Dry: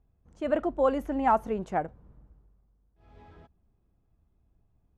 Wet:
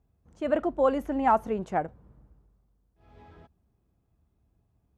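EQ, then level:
high-pass filter 51 Hz
+1.0 dB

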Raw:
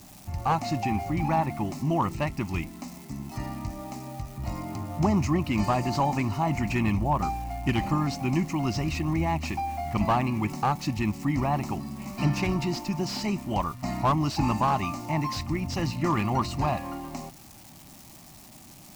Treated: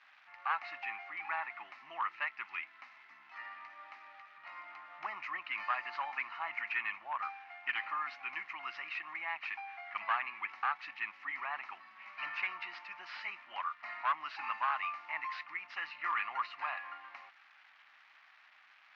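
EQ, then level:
four-pole ladder band-pass 1,800 Hz, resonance 45%
high-frequency loss of the air 220 metres
parametric band 2,300 Hz +12 dB 3 octaves
0.0 dB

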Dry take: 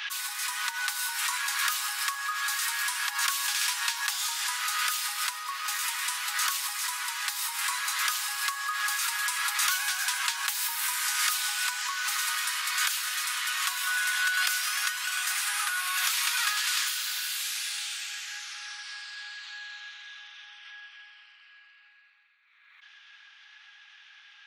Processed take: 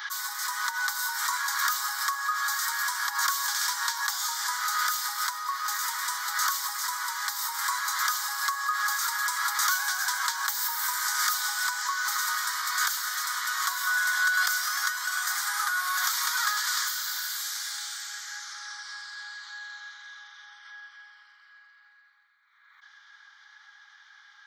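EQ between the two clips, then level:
parametric band 10,000 Hz −14 dB 0.35 octaves
phaser with its sweep stopped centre 1,100 Hz, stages 4
+5.0 dB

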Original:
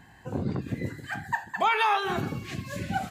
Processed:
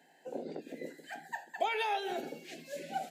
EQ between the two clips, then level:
Chebyshev high-pass with heavy ripple 160 Hz, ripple 6 dB
phaser with its sweep stopped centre 470 Hz, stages 4
0.0 dB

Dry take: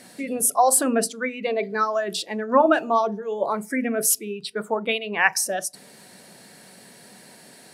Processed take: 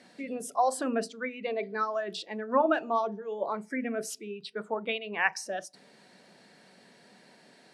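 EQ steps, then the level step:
band-pass filter 150–4,800 Hz
−7.5 dB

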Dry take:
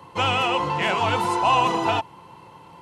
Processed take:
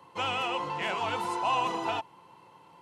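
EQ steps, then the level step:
high-pass filter 210 Hz 6 dB per octave
−8.5 dB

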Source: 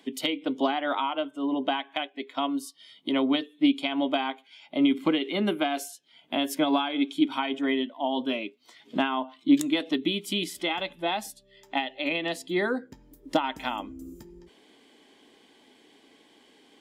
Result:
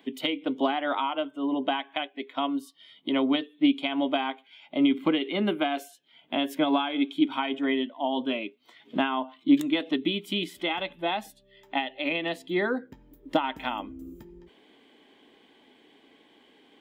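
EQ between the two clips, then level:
flat-topped bell 7,400 Hz −10.5 dB
0.0 dB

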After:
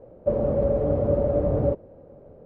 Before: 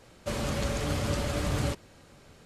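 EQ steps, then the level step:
low-pass with resonance 550 Hz, resonance Q 3.5
+3.5 dB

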